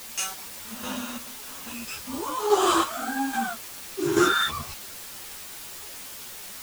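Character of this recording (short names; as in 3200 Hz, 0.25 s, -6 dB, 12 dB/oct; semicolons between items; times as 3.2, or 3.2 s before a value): chopped level 1.2 Hz, depth 65%, duty 40%; a quantiser's noise floor 8-bit, dither triangular; a shimmering, thickened sound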